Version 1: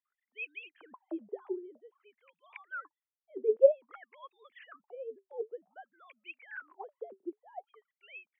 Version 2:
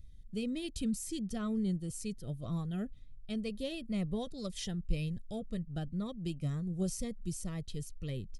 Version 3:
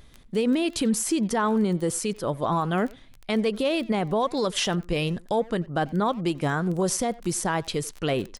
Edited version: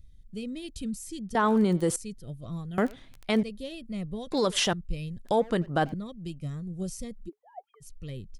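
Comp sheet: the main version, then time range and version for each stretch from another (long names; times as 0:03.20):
2
0:01.35–0:01.96: punch in from 3
0:02.78–0:03.43: punch in from 3
0:04.32–0:04.73: punch in from 3
0:05.25–0:05.94: punch in from 3
0:07.27–0:07.83: punch in from 1, crossfade 0.06 s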